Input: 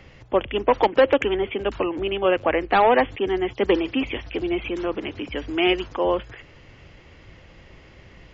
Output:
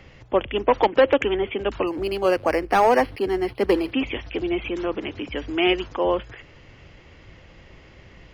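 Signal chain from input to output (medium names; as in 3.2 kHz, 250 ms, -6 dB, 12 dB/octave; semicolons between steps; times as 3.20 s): 1.87–3.92 s: decimation joined by straight lines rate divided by 6×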